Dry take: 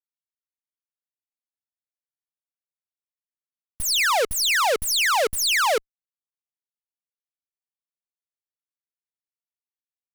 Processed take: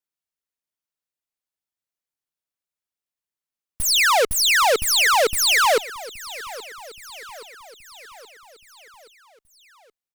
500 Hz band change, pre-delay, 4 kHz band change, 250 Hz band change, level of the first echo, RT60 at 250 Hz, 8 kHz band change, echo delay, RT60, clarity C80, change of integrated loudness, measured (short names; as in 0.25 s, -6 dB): +3.5 dB, none, +3.5 dB, +3.5 dB, -18.0 dB, none, +3.5 dB, 0.824 s, none, none, +3.5 dB